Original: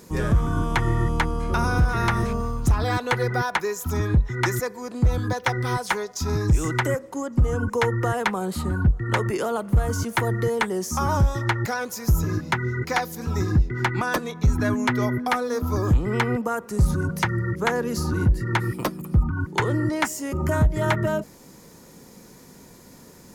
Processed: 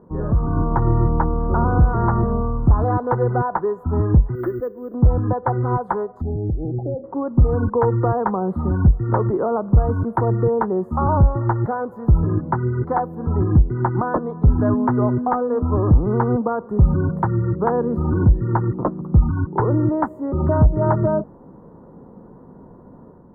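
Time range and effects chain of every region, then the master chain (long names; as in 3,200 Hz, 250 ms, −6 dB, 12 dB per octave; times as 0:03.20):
0:04.35–0:04.94: high-frequency loss of the air 81 metres + phaser with its sweep stopped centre 360 Hz, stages 4 + bad sample-rate conversion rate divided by 3×, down filtered, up zero stuff
0:06.21–0:07.04: downward compressor 10 to 1, threshold −24 dBFS + linear-phase brick-wall band-stop 840–8,900 Hz + high-frequency loss of the air 460 metres
whole clip: inverse Chebyshev low-pass filter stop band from 2,300 Hz, stop band 40 dB; automatic gain control gain up to 5.5 dB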